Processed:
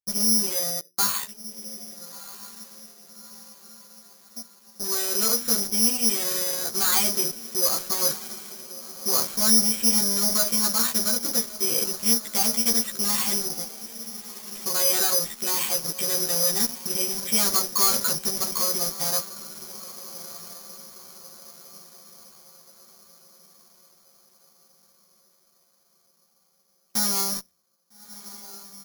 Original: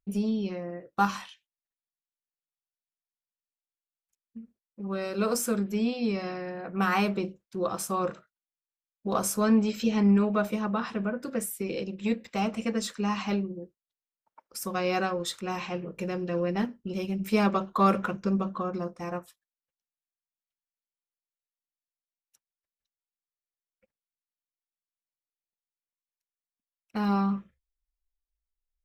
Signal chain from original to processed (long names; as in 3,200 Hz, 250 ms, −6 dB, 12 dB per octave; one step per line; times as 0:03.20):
high-pass filter 66 Hz 24 dB per octave
parametric band 2,300 Hz +6 dB 2.3 octaves
mains-hum notches 60/120/180/240/300/360/420 Hz
in parallel at −3 dB: fuzz pedal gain 38 dB, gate −39 dBFS
on the sum: high-frequency loss of the air 98 metres
double-tracking delay 13 ms −2 dB
on a send: feedback delay with all-pass diffusion 1,289 ms, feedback 50%, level −15 dB
on the sum: bad sample-rate conversion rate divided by 8×, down filtered, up zero stuff
level −17 dB